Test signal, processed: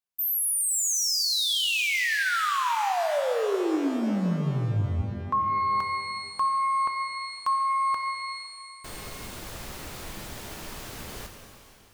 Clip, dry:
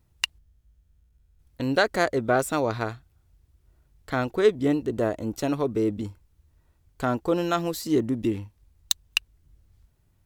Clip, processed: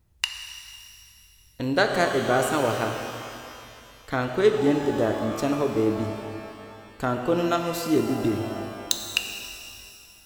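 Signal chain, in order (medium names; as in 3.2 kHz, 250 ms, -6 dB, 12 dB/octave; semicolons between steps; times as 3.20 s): pitch-shifted reverb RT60 2.5 s, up +12 st, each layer -8 dB, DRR 4.5 dB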